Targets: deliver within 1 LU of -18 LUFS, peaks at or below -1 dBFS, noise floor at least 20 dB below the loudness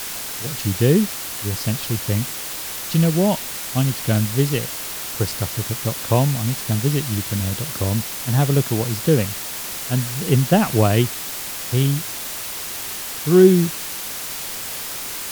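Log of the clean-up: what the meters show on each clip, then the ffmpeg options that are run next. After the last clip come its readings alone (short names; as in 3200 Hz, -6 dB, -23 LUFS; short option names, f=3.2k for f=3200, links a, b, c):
noise floor -30 dBFS; noise floor target -41 dBFS; loudness -20.5 LUFS; peak -2.0 dBFS; loudness target -18.0 LUFS
-> -af "afftdn=nr=11:nf=-30"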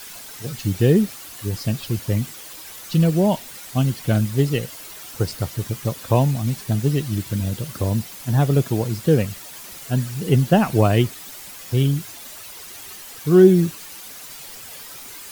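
noise floor -39 dBFS; noise floor target -41 dBFS
-> -af "afftdn=nr=6:nf=-39"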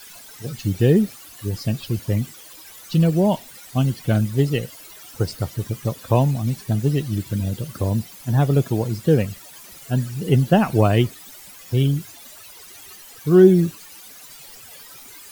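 noise floor -43 dBFS; loudness -20.5 LUFS; peak -2.0 dBFS; loudness target -18.0 LUFS
-> -af "volume=2.5dB,alimiter=limit=-1dB:level=0:latency=1"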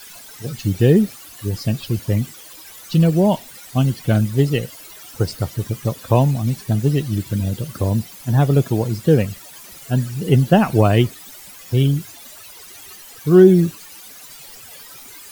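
loudness -18.5 LUFS; peak -1.0 dBFS; noise floor -40 dBFS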